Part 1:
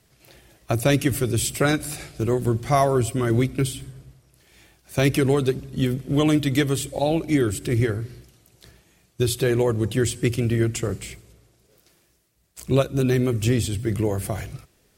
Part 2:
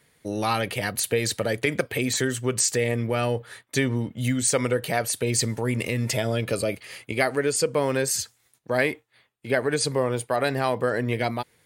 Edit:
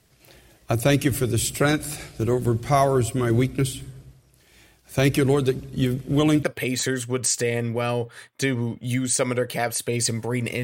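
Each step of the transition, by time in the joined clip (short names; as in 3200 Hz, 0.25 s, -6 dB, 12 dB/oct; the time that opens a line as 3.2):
part 1
6.43 switch to part 2 from 1.77 s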